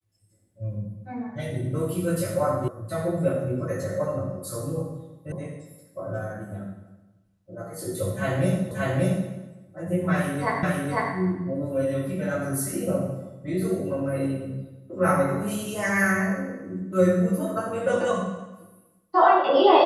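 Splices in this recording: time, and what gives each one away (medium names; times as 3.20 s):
2.68 s: sound stops dead
5.32 s: sound stops dead
8.71 s: repeat of the last 0.58 s
10.63 s: repeat of the last 0.5 s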